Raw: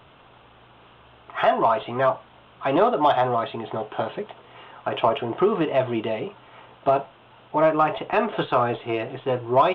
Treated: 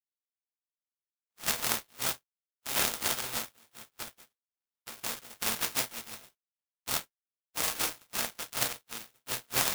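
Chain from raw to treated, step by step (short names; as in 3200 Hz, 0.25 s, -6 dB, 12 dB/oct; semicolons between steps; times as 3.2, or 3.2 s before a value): spectral contrast lowered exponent 0.11; limiter -7 dBFS, peak gain reduction 10 dB; non-linear reverb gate 0.12 s falling, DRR -7 dB; power-law curve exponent 3; crackling interface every 0.37 s, samples 256, repeat, from 0.74; gain -1 dB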